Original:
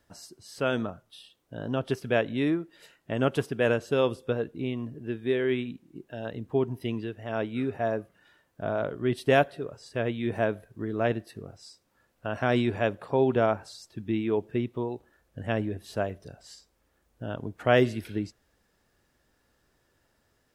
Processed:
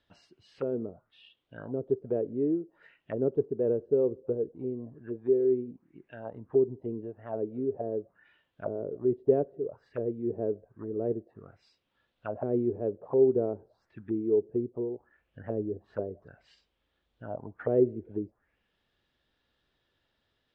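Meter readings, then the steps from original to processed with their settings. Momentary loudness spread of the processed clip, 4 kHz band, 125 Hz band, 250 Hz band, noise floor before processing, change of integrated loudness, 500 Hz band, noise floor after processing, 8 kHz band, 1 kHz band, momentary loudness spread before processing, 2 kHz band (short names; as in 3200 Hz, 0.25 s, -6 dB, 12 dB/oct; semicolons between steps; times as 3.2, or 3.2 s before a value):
16 LU, under -20 dB, -8.0 dB, -3.0 dB, -71 dBFS, -2.0 dB, -0.5 dB, -78 dBFS, n/a, -13.0 dB, 18 LU, under -20 dB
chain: envelope low-pass 420–3600 Hz down, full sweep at -27 dBFS; gain -8.5 dB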